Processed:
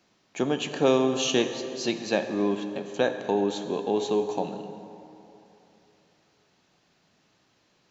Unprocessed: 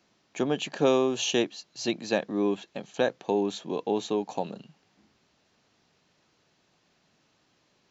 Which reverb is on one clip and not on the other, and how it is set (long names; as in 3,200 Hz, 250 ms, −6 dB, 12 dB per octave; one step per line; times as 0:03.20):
dense smooth reverb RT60 3 s, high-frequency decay 0.6×, DRR 7 dB
level +1 dB